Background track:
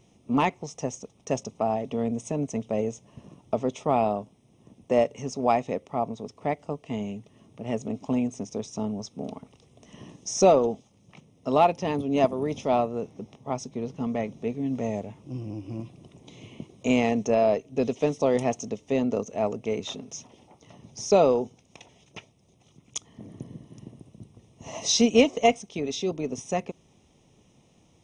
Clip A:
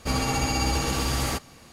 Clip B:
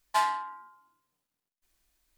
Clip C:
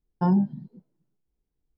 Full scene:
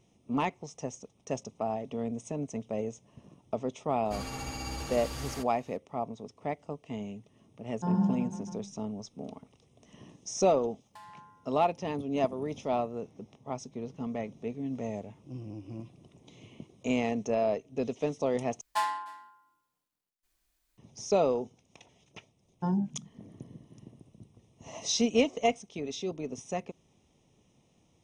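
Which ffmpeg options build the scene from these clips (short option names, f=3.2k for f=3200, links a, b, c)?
-filter_complex "[3:a]asplit=2[a][b];[2:a]asplit=2[c][d];[0:a]volume=-6.5dB[e];[a]aecho=1:1:50|110|182|268.4|372.1|496.5|645.8:0.794|0.631|0.501|0.398|0.316|0.251|0.2[f];[c]acompressor=threshold=-31dB:ratio=6:attack=3.2:release=140:knee=1:detection=peak[g];[d]aecho=1:1:305:0.0794[h];[e]asplit=2[i][j];[i]atrim=end=18.614[k];[h]atrim=end=2.17,asetpts=PTS-STARTPTS,volume=-3.5dB[l];[j]atrim=start=20.776[m];[1:a]atrim=end=1.72,asetpts=PTS-STARTPTS,volume=-13dB,afade=t=in:d=0.004:c=hsin,afade=t=out:st=1.716:d=0.004:c=hsin,adelay=178605S[n];[f]atrim=end=1.77,asetpts=PTS-STARTPTS,volume=-10.5dB,afade=t=in:d=0.004:c=hsin,afade=t=out:st=1.766:d=0.004:c=hsin,adelay=7610[o];[g]atrim=end=2.17,asetpts=PTS-STARTPTS,volume=-15.5dB,afade=t=in:d=0.004:c=hsin,afade=t=out:st=2.166:d=0.004:c=hsin,adelay=10810[p];[b]atrim=end=1.77,asetpts=PTS-STARTPTS,volume=-8dB,afade=t=in:d=0.004:c=hsin,afade=t=out:st=1.766:d=0.004:c=hsin,adelay=22410[q];[k][l]acrossfade=d=0.004:c1=hsin:c2=hsin[r];[r][m]acrossfade=d=0.004:c1=hsin:c2=hsin[s];[s][n][o][p][q]amix=inputs=5:normalize=0"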